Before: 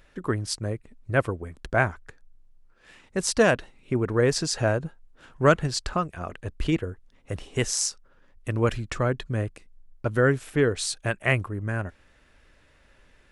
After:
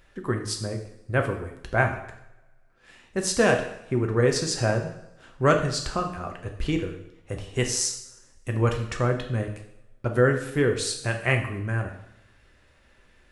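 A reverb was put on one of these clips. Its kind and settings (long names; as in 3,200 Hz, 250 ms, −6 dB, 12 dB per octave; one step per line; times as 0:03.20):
coupled-rooms reverb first 0.71 s, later 2 s, from −25 dB, DRR 3.5 dB
level −1.5 dB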